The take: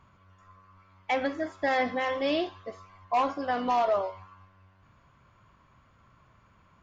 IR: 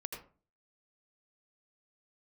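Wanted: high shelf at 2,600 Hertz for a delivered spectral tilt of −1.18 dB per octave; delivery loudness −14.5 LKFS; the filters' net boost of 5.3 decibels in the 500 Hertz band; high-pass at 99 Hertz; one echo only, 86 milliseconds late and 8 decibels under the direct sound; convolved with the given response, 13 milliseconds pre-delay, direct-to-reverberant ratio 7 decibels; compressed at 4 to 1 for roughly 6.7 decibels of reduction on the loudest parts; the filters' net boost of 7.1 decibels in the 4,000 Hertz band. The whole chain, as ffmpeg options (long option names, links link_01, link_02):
-filter_complex "[0:a]highpass=99,equalizer=frequency=500:width_type=o:gain=6,highshelf=frequency=2600:gain=6.5,equalizer=frequency=4000:width_type=o:gain=4,acompressor=threshold=-26dB:ratio=4,aecho=1:1:86:0.398,asplit=2[link_01][link_02];[1:a]atrim=start_sample=2205,adelay=13[link_03];[link_02][link_03]afir=irnorm=-1:irlink=0,volume=-6dB[link_04];[link_01][link_04]amix=inputs=2:normalize=0,volume=15dB"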